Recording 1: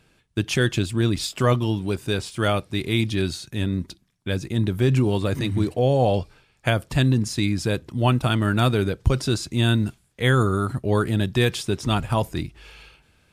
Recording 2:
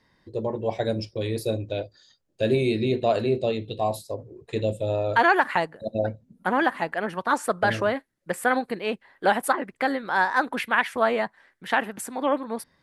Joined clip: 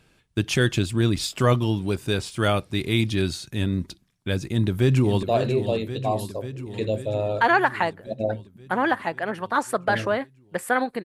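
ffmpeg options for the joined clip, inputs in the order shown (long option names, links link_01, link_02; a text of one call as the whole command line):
ffmpeg -i cue0.wav -i cue1.wav -filter_complex "[0:a]apad=whole_dur=11.04,atrim=end=11.04,atrim=end=5.232[link_01];[1:a]atrim=start=2.978:end=8.79[link_02];[link_01][link_02]acrossfade=duration=0.004:curve1=hsin:curve2=hsin,asplit=2[link_03][link_04];[link_04]afade=type=in:start_time=4.46:duration=0.01,afade=type=out:start_time=5.23:duration=0.01,aecho=0:1:540|1080|1620|2160|2700|3240|3780|4320|4860|5400:0.334965|0.234476|0.164133|0.114893|0.0804252|0.0562976|0.0394083|0.0275858|0.0193101|0.0135171[link_05];[link_03][link_05]amix=inputs=2:normalize=0" out.wav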